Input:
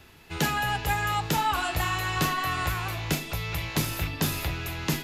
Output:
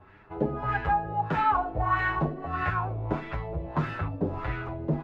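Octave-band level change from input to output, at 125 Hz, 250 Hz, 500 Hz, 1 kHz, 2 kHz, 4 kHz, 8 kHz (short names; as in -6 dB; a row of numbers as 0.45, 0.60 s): -1.0 dB, +0.5 dB, +3.0 dB, +1.5 dB, -3.5 dB, -18.0 dB, under -30 dB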